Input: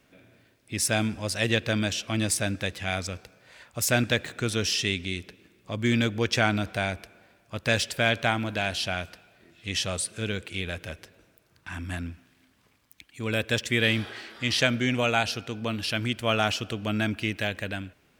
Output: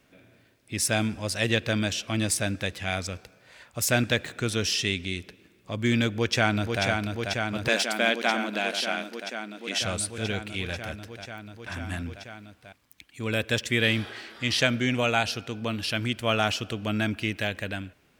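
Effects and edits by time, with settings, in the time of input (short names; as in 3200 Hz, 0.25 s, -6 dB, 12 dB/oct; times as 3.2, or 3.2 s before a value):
6.08–6.84 echo throw 0.49 s, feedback 85%, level -4.5 dB
7.68–9.82 brick-wall FIR high-pass 190 Hz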